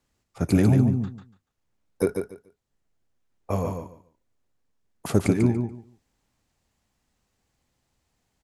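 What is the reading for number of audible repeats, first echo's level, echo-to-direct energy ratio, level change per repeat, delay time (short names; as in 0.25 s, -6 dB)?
3, -6.0 dB, -6.0 dB, -14.5 dB, 0.144 s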